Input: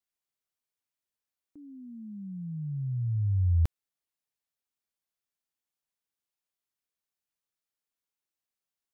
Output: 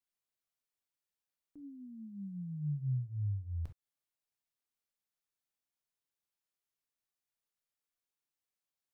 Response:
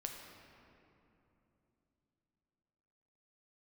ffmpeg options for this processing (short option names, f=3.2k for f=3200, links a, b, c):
-filter_complex "[0:a]acompressor=threshold=-32dB:ratio=12[a];[1:a]atrim=start_sample=2205,atrim=end_sample=3087[b];[a][b]afir=irnorm=-1:irlink=0"